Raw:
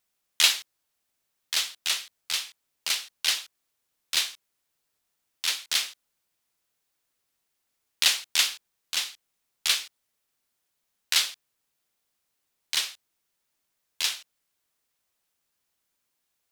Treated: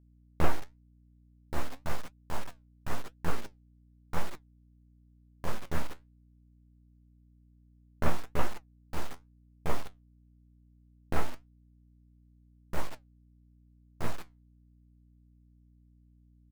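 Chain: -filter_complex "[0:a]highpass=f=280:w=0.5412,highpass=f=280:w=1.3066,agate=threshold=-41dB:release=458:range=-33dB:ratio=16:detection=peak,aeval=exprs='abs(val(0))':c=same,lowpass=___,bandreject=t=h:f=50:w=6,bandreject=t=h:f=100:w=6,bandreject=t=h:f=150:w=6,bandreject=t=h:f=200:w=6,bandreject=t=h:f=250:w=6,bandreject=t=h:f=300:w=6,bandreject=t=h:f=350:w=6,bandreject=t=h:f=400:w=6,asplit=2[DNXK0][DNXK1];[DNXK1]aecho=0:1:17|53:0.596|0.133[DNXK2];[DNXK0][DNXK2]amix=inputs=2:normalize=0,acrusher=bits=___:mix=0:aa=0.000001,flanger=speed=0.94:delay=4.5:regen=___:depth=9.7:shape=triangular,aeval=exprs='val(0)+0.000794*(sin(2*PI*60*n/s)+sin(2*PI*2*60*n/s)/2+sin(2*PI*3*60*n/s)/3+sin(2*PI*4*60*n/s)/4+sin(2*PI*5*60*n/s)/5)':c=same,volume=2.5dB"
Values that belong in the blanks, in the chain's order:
1300, 6, 66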